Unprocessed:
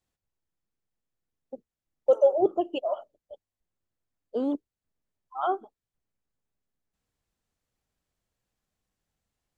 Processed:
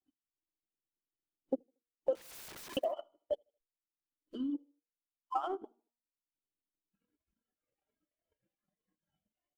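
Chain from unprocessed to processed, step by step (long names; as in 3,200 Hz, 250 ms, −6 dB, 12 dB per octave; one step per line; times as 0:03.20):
running median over 9 samples
high-shelf EQ 2,200 Hz −7.5 dB
hollow resonant body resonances 310/3,000 Hz, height 16 dB, ringing for 35 ms
noise reduction from a noise print of the clip's start 18 dB
tilt shelving filter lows −4.5 dB, about 1,300 Hz
in parallel at −1 dB: downward compressor 4 to 1, threshold −44 dBFS, peak gain reduction 25.5 dB
0:02.15–0:02.77: on the sum: wrap-around overflow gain 42 dB
brickwall limiter −29.5 dBFS, peak gain reduction 19.5 dB
hum removal 237.4 Hz, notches 8
on a send: repeating echo 77 ms, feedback 39%, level −18 dB
on the sum: transient designer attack +11 dB, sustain −9 dB
0:04.29–0:04.55: gain on a spectral selection 370–970 Hz −20 dB
level −3 dB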